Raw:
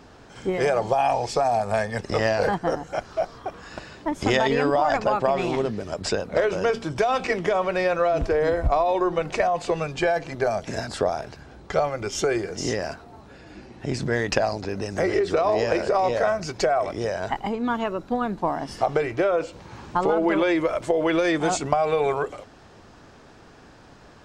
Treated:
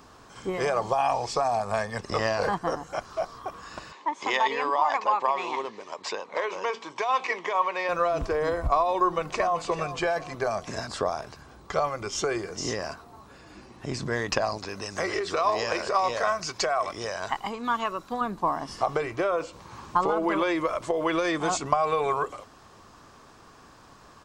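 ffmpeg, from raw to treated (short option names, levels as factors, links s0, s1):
-filter_complex "[0:a]asettb=1/sr,asplit=3[s0][s1][s2];[s0]atrim=end=3.924[s3];[s1]atrim=start=3.92:end=7.89,asetpts=PTS-STARTPTS,afade=t=in:d=0.004:c=qsin,afade=t=out:st=3.966:d=0.004:c=qsin,highpass=470,equalizer=f=650:t=q:w=4:g=-6,equalizer=f=930:t=q:w=4:g=7,equalizer=f=1400:t=q:w=4:g=-8,equalizer=f=2100:t=q:w=4:g=5,equalizer=f=5100:t=q:w=4:g=-6,lowpass=f=6400:w=0.5412,lowpass=f=6400:w=1.3066[s4];[s2]atrim=start=7.886[s5];[s3][s4]acrossfade=d=0.004:c1=hsin:c2=qsin[s6];[s6][s5]acrossfade=d=0.004:c1=qsin:c2=hsin,asplit=2[s7][s8];[s8]afade=t=in:st=8.99:d=0.01,afade=t=out:st=9.59:d=0.01,aecho=0:1:390|780|1170|1560:0.237137|0.106712|0.0480203|0.0216091[s9];[s7][s9]amix=inputs=2:normalize=0,asettb=1/sr,asplit=3[s10][s11][s12];[s10]atrim=end=14.584[s13];[s11]atrim=start=14.58:end=18.21,asetpts=PTS-STARTPTS,afade=t=in:d=0.004:c=qsin,afade=t=out:st=3.626:d=0.004:c=qsin,tiltshelf=f=930:g=-4.5[s14];[s12]atrim=start=18.206[s15];[s13][s14]acrossfade=d=0.004:c1=hsin:c2=qsin[s16];[s16][s15]acrossfade=d=0.004:c1=qsin:c2=hsin,aemphasis=mode=production:type=50kf,acrossover=split=7700[s17][s18];[s18]acompressor=threshold=0.00141:ratio=4:attack=1:release=60[s19];[s17][s19]amix=inputs=2:normalize=0,equalizer=f=1100:t=o:w=0.37:g=11.5,volume=0.531"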